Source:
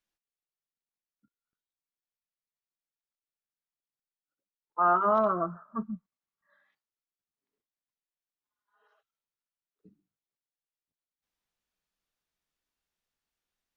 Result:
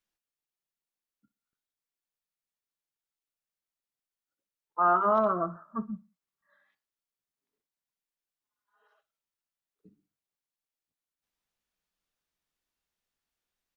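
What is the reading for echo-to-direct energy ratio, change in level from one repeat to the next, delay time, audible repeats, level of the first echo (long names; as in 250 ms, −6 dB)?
−19.5 dB, −9.5 dB, 60 ms, 2, −20.0 dB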